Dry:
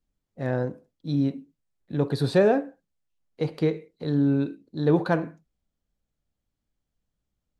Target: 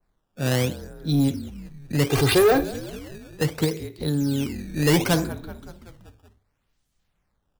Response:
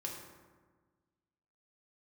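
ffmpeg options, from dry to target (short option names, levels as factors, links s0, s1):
-filter_complex "[0:a]bass=f=250:g=4,treble=f=4000:g=12,asplit=2[s0][s1];[s1]asplit=6[s2][s3][s4][s5][s6][s7];[s2]adelay=189,afreqshift=-43,volume=0.141[s8];[s3]adelay=378,afreqshift=-86,volume=0.0902[s9];[s4]adelay=567,afreqshift=-129,volume=0.0575[s10];[s5]adelay=756,afreqshift=-172,volume=0.0372[s11];[s6]adelay=945,afreqshift=-215,volume=0.0237[s12];[s7]adelay=1134,afreqshift=-258,volume=0.0151[s13];[s8][s9][s10][s11][s12][s13]amix=inputs=6:normalize=0[s14];[s0][s14]amix=inputs=2:normalize=0,asettb=1/sr,asplit=3[s15][s16][s17];[s15]atrim=end=3.644[s18];[s16]atrim=start=3.64:end=4.63,asetpts=PTS-STARTPTS,afade=t=in:d=0.004:c=qsin,afade=t=out:st=0.986:d=0.004:c=qsin,acompressor=threshold=0.0708:ratio=4[s19];[s17]atrim=start=4.626[s20];[s18][s19]acrossfade=d=0.004:c1=hsin:c2=qsin[s21];[s21][s20]acrossfade=d=0.004:c1=qsin:c2=hsin,acrossover=split=200[s22][s23];[s23]acrusher=samples=12:mix=1:aa=0.000001:lfo=1:lforange=19.2:lforate=0.69[s24];[s22][s24]amix=inputs=2:normalize=0,asettb=1/sr,asplit=3[s25][s26][s27];[s25]atrim=end=2.094[s28];[s26]atrim=start=2.09:end=2.64,asetpts=PTS-STARTPTS,afade=t=in:d=0.004:c=qsin,afade=t=out:st=0.546:d=0.004:c=qsin,aecho=1:1:2.5:0.9,atrim=end_sample=24255[s29];[s27]atrim=start=2.636[s30];[s28][s29]acrossfade=d=0.004:c1=hsin:c2=qsin[s31];[s31][s30]acrossfade=d=0.004:c1=qsin:c2=hsin,asoftclip=type=tanh:threshold=0.178,adynamicequalizer=threshold=0.00891:dfrequency=1700:dqfactor=0.7:tfrequency=1700:tqfactor=0.7:attack=5:release=100:ratio=0.375:range=2.5:mode=boostabove:tftype=highshelf,volume=1.41"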